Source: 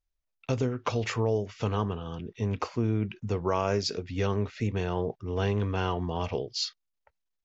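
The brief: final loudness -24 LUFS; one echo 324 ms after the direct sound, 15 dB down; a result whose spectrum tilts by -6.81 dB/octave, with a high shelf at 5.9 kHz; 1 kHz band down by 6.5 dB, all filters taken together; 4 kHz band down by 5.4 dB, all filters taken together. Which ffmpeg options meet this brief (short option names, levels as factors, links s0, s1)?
-af "equalizer=f=1000:t=o:g=-8,equalizer=f=4000:t=o:g=-4,highshelf=f=5900:g=-6,aecho=1:1:324:0.178,volume=2.37"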